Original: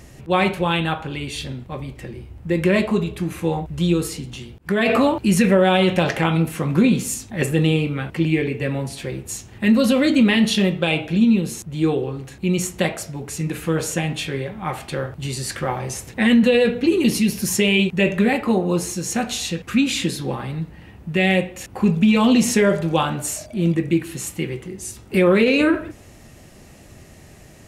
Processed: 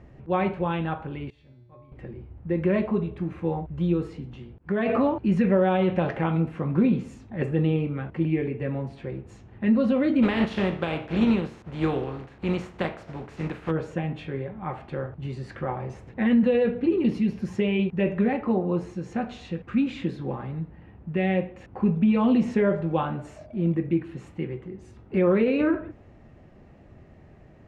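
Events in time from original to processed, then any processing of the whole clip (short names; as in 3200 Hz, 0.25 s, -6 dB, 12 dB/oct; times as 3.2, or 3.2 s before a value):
1.3–1.92 resonator 120 Hz, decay 0.92 s, harmonics odd, mix 90%
10.22–13.7 spectral contrast lowered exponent 0.57
whole clip: Bessel low-pass 1300 Hz, order 2; gain -5 dB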